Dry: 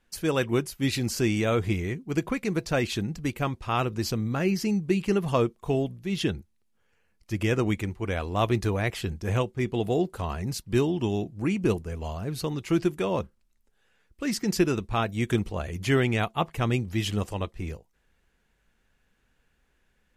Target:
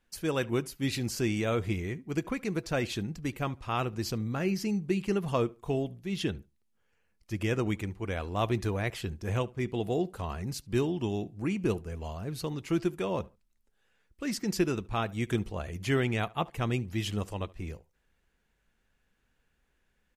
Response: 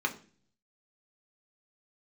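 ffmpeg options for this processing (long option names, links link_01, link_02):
-filter_complex "[0:a]asplit=2[link_01][link_02];[link_02]adelay=72,lowpass=frequency=2600:poles=1,volume=-22.5dB,asplit=2[link_03][link_04];[link_04]adelay=72,lowpass=frequency=2600:poles=1,volume=0.24[link_05];[link_01][link_03][link_05]amix=inputs=3:normalize=0,volume=-4.5dB"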